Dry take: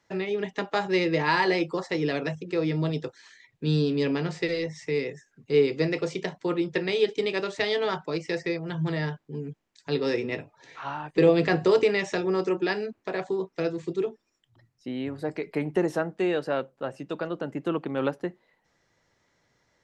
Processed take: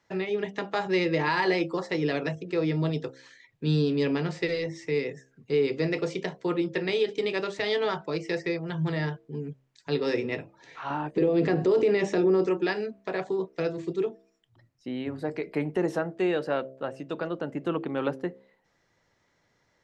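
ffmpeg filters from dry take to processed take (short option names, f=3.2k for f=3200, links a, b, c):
-filter_complex "[0:a]asettb=1/sr,asplit=3[a][b][c];[a]atrim=end=10.904[d];[b]atrim=start=10.9:end=12.46,asetpts=PTS-STARTPTS,afade=t=in:d=0.004:c=qsin,afade=t=out:st=1.556:d=0.004:c=qsin,equalizer=f=310:t=o:w=2:g=10.5[e];[c]atrim=start=12.456[f];[d][e]acrossfade=d=0.004:c1=hsin:c2=qsin[g];[g][f]acrossfade=d=0.004:c1=qsin:c2=hsin,highshelf=f=7k:g=-5.5,alimiter=limit=-15.5dB:level=0:latency=1:release=54,bandreject=f=66.19:t=h:w=4,bandreject=f=132.38:t=h:w=4,bandreject=f=198.57:t=h:w=4,bandreject=f=264.76:t=h:w=4,bandreject=f=330.95:t=h:w=4,bandreject=f=397.14:t=h:w=4,bandreject=f=463.33:t=h:w=4,bandreject=f=529.52:t=h:w=4,bandreject=f=595.71:t=h:w=4,bandreject=f=661.9:t=h:w=4"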